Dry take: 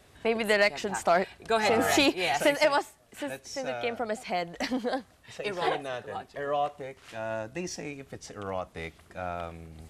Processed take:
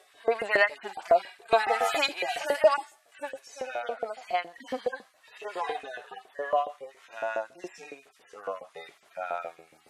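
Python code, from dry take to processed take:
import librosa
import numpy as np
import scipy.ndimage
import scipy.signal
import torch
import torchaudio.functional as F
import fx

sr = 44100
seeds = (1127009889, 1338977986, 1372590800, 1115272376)

y = fx.hpss_only(x, sr, part='harmonic')
y = fx.filter_lfo_highpass(y, sr, shape='saw_up', hz=7.2, low_hz=440.0, high_hz=1900.0, q=1.3)
y = y * librosa.db_to_amplitude(3.0)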